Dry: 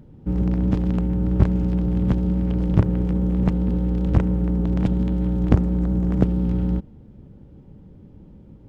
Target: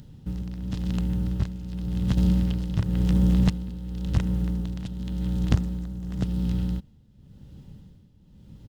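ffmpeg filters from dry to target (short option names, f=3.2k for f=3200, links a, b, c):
-filter_complex "[0:a]tremolo=f=0.92:d=0.76,asettb=1/sr,asplit=3[a][b][c];[a]atrim=end=2.174[d];[b]atrim=start=2.17:end=3.5,asetpts=PTS-STARTPTS,afade=t=in:d=0.004:c=qsin,afade=t=out:st=1.326:d=0.004:c=qsin,acontrast=79[e];[c]atrim=start=3.496[f];[d][e]acrossfade=d=0.004:c1=hsin:c2=qsin[g];[g][f]acrossfade=d=0.004:c1=qsin:c2=hsin,firequalizer=gain_entry='entry(130,0);entry(340,-12);entry(2200,1);entry(3900,9)':delay=0.05:min_phase=1,asplit=2[h][i];[i]acompressor=threshold=-33dB:ratio=6,volume=0dB[j];[h][j]amix=inputs=2:normalize=0,lowshelf=f=200:g=-5.5,bandreject=f=2.3k:w=10"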